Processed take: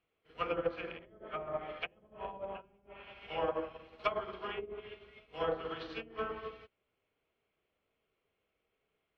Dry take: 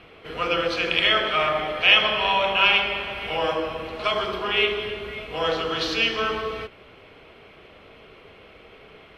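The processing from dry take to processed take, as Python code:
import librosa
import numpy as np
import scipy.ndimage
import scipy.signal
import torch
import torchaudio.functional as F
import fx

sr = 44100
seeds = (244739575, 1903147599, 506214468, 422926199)

y = fx.env_lowpass_down(x, sr, base_hz=320.0, full_db=-16.0)
y = fx.upward_expand(y, sr, threshold_db=-41.0, expansion=2.5)
y = F.gain(torch.from_numpy(y), -5.5).numpy()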